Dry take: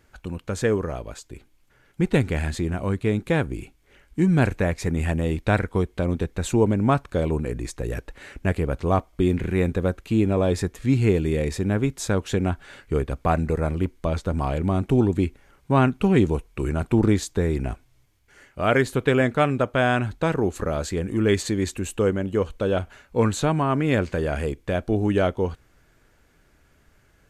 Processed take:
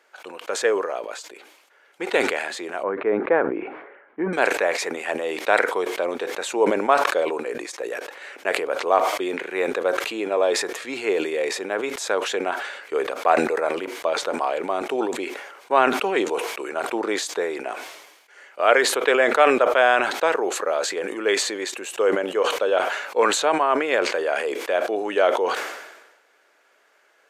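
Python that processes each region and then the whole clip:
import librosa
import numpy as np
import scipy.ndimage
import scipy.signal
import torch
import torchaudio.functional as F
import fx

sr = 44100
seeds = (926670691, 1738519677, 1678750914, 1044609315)

y = fx.chain(x, sr, fx.lowpass(hz=1800.0, slope=24),
    fx.low_shelf(hz=270.0, db=10.5), at=(2.83, 4.33))
y = scipy.signal.sosfilt(scipy.signal.butter(4, 460.0, 'highpass', fs=sr, output='sos'), y)
y = fx.high_shelf(y, sr, hz=7200.0, db=-10.5)
y = fx.sustainer(y, sr, db_per_s=53.0)
y = F.gain(torch.from_numpy(y), 5.0).numpy()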